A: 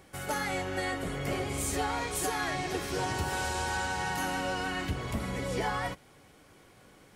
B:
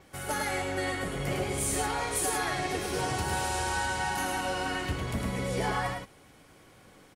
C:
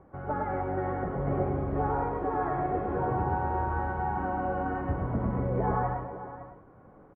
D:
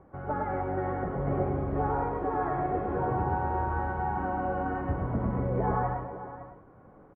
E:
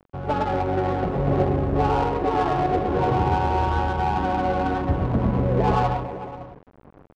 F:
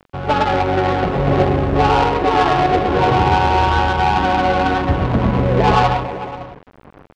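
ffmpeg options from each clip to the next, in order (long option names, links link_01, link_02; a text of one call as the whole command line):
ffmpeg -i in.wav -filter_complex "[0:a]asplit=2[link_01][link_02];[link_02]aecho=0:1:106:0.631[link_03];[link_01][link_03]amix=inputs=2:normalize=0,adynamicequalizer=threshold=0.00158:dfrequency=9700:dqfactor=4.2:tfrequency=9700:tqfactor=4.2:attack=5:release=100:ratio=0.375:range=3.5:mode=boostabove:tftype=bell" out.wav
ffmpeg -i in.wav -af "lowpass=frequency=1200:width=0.5412,lowpass=frequency=1200:width=1.3066,aecho=1:1:129|437|556:0.447|0.168|0.211,volume=2dB" out.wav
ffmpeg -i in.wav -af anull out.wav
ffmpeg -i in.wav -af "acrusher=bits=7:mix=0:aa=0.000001,adynamicsmooth=sensitivity=4:basefreq=550,volume=8dB" out.wav
ffmpeg -i in.wav -af "equalizer=frequency=3400:width=0.4:gain=9.5,volume=5dB" out.wav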